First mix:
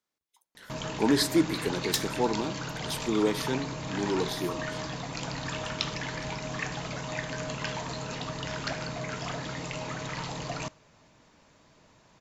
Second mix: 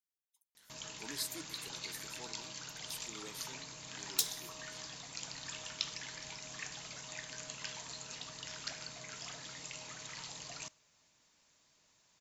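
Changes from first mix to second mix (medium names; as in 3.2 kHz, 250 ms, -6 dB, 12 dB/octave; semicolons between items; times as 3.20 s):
speech -7.5 dB; second sound: entry +2.25 s; master: add pre-emphasis filter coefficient 0.9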